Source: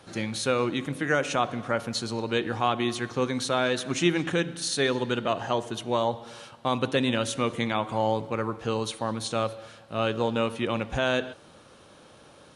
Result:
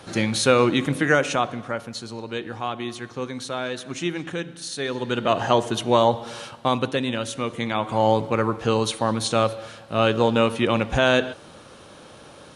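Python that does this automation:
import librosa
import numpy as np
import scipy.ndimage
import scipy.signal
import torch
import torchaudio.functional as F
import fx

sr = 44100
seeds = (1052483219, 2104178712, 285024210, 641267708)

y = fx.gain(x, sr, db=fx.line((0.97, 8.0), (1.92, -3.5), (4.83, -3.5), (5.4, 8.0), (6.51, 8.0), (7.02, -0.5), (7.52, -0.5), (8.11, 7.0)))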